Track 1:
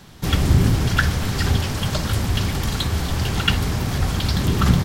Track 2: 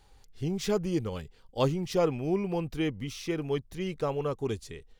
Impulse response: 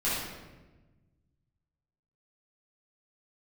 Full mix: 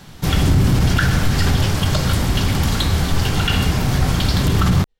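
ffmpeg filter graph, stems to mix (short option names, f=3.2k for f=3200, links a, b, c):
-filter_complex "[0:a]volume=2dB,asplit=2[a][b];[b]volume=-14dB[c];[1:a]volume=-13dB[d];[2:a]atrim=start_sample=2205[e];[c][e]afir=irnorm=-1:irlink=0[f];[a][d][f]amix=inputs=3:normalize=0,alimiter=limit=-7dB:level=0:latency=1:release=23"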